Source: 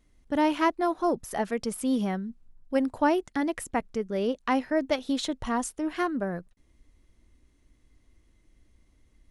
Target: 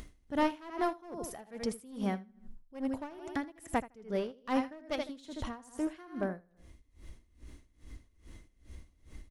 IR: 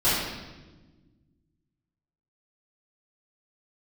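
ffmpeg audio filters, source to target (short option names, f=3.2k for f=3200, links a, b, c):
-filter_complex "[0:a]acompressor=mode=upward:threshold=-30dB:ratio=2.5,equalizer=f=70:w=1.7:g=4.5,asplit=2[a][b];[b]aecho=0:1:79|158|237|316:0.355|0.135|0.0512|0.0195[c];[a][c]amix=inputs=2:normalize=0,aeval=exprs='clip(val(0),-1,0.0631)':c=same,aeval=exprs='val(0)*pow(10,-23*(0.5-0.5*cos(2*PI*2.4*n/s))/20)':c=same,volume=-2.5dB"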